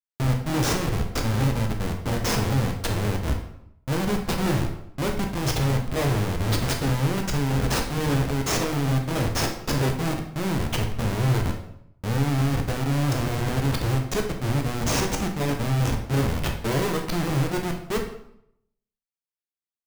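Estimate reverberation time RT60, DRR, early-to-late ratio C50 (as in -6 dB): 0.75 s, 2.0 dB, 6.5 dB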